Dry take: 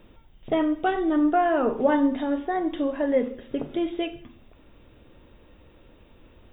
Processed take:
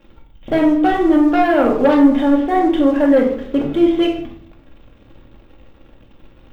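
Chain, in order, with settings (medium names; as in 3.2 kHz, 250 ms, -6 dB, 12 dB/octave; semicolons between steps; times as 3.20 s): waveshaping leveller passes 2; simulated room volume 830 m³, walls furnished, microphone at 2.3 m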